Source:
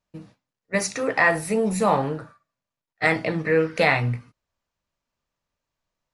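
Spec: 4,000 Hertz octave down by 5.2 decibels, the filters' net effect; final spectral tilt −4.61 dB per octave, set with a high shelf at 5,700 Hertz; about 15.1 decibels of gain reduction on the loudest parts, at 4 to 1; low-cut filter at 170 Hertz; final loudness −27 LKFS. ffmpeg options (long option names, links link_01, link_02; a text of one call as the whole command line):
ffmpeg -i in.wav -af "highpass=170,equalizer=frequency=4000:width_type=o:gain=-8.5,highshelf=frequency=5700:gain=4.5,acompressor=threshold=-34dB:ratio=4,volume=9.5dB" out.wav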